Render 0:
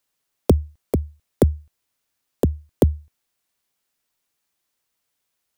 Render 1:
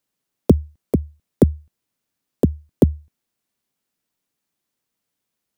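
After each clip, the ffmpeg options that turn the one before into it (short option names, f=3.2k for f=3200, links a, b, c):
-af "equalizer=f=210:t=o:w=2:g=10,volume=-4dB"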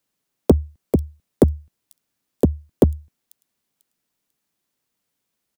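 -filter_complex "[0:a]acrossover=split=310|3500[a][b][c];[a]asoftclip=type=tanh:threshold=-11.5dB[d];[c]aecho=1:1:494|988|1482:0.211|0.0528|0.0132[e];[d][b][e]amix=inputs=3:normalize=0,volume=2dB"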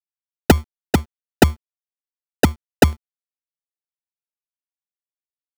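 -af "acrusher=samples=40:mix=1:aa=0.000001,aeval=exprs='sgn(val(0))*max(abs(val(0))-0.0251,0)':c=same,volume=2dB"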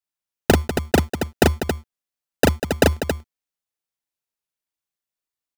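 -filter_complex "[0:a]acompressor=threshold=-16dB:ratio=6,asplit=2[a][b];[b]aecho=0:1:37.9|195.3|274.1:0.794|0.316|0.447[c];[a][c]amix=inputs=2:normalize=0,volume=3dB"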